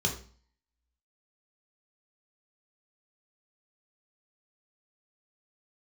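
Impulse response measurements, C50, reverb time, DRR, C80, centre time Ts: 9.0 dB, 0.45 s, 0.0 dB, 13.5 dB, 18 ms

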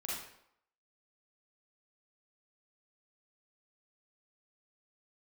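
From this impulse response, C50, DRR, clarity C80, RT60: -1.5 dB, -6.5 dB, 4.0 dB, 0.75 s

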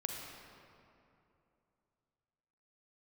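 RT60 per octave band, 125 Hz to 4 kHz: 3.2 s, 3.1 s, 2.9 s, 2.7 s, 2.2 s, 1.6 s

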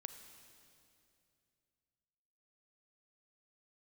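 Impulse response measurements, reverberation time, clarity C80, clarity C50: 2.6 s, 9.0 dB, 8.5 dB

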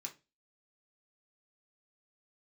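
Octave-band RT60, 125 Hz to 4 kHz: 0.35 s, 0.30 s, 0.30 s, 0.25 s, 0.25 s, 0.25 s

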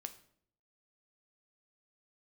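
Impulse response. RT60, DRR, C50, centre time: 0.60 s, 8.0 dB, 14.0 dB, 6 ms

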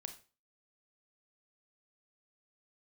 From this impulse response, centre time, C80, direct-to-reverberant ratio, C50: 10 ms, 16.5 dB, 6.5 dB, 11.5 dB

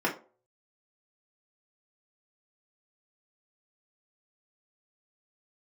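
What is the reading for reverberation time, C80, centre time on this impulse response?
0.40 s, 17.0 dB, 18 ms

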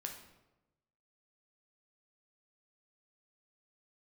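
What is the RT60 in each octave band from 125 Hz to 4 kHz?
1.3 s, 1.1 s, 1.1 s, 0.95 s, 0.80 s, 0.65 s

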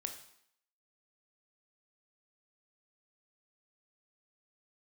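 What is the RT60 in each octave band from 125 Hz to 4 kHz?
0.55 s, 0.70 s, 0.65 s, 0.70 s, 0.70 s, 0.70 s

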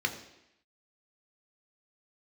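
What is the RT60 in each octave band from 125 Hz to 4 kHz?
0.70 s, 0.85 s, 0.80 s, 0.85 s, 0.90 s, 0.85 s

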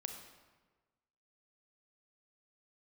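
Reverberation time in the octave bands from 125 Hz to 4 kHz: 1.5 s, 1.4 s, 1.4 s, 1.3 s, 1.1 s, 0.90 s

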